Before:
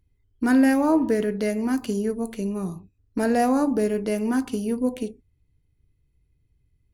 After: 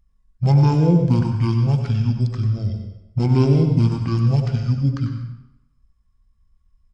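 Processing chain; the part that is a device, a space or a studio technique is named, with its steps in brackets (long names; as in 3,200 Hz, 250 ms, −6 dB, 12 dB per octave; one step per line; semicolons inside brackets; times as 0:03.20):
monster voice (pitch shifter −10.5 semitones; formants moved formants −2 semitones; low-shelf EQ 180 Hz +5 dB; single-tap delay 93 ms −13.5 dB; convolution reverb RT60 0.85 s, pre-delay 93 ms, DRR 5.5 dB)
level +2 dB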